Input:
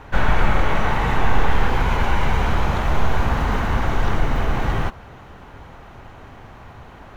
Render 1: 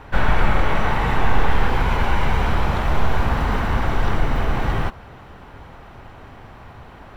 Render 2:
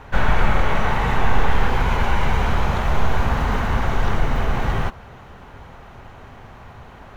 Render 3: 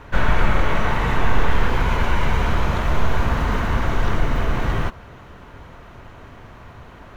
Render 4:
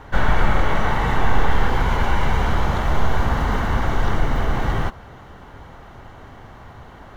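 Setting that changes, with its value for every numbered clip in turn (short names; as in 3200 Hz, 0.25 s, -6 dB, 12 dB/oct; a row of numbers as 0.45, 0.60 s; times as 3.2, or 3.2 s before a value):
notch, frequency: 6500, 310, 800, 2500 Hz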